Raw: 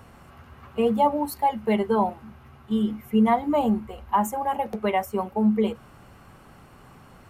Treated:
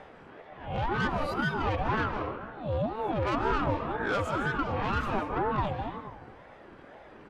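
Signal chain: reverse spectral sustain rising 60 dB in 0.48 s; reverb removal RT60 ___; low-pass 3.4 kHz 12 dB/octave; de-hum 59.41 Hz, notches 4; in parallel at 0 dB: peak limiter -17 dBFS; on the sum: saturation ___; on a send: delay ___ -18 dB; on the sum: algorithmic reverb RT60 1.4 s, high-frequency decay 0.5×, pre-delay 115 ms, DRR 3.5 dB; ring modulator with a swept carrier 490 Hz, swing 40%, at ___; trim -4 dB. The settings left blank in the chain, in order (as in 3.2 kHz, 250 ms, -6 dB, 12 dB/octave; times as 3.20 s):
1.1 s, -19 dBFS, 77 ms, 2 Hz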